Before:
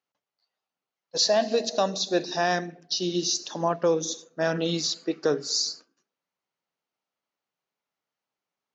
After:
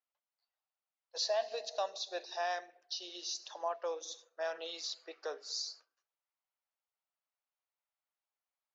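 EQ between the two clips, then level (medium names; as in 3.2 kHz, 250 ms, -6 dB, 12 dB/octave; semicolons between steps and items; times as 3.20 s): high-pass 590 Hz 24 dB/octave; dynamic bell 1.5 kHz, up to -4 dB, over -44 dBFS, Q 1.4; distance through air 100 m; -8.0 dB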